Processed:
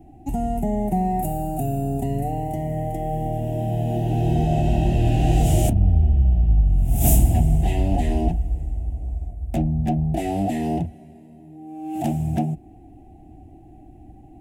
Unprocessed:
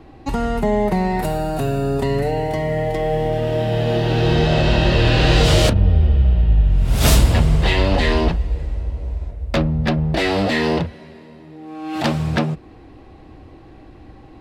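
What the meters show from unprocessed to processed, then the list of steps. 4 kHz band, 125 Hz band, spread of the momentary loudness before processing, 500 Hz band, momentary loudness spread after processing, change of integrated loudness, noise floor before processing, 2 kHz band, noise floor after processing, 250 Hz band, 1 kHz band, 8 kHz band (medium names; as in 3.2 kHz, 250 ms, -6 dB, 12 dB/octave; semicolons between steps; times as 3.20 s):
-18.5 dB, -2.5 dB, 11 LU, -9.0 dB, 11 LU, -4.0 dB, -43 dBFS, -18.0 dB, -46 dBFS, -2.5 dB, -3.0 dB, -2.5 dB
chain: FFT filter 330 Hz 0 dB, 520 Hz -17 dB, 730 Hz +5 dB, 1.1 kHz -29 dB, 1.9 kHz -17 dB, 2.8 kHz -12 dB, 4.4 kHz -23 dB, 7 kHz -1 dB, 15 kHz +8 dB; trim -2.5 dB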